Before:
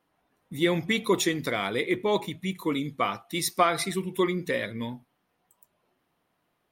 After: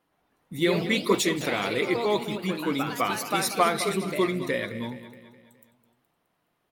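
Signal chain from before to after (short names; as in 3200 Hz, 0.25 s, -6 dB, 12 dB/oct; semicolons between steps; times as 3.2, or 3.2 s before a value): feedback echo 0.21 s, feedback 51%, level -13.5 dB; echoes that change speed 0.122 s, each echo +2 st, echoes 3, each echo -6 dB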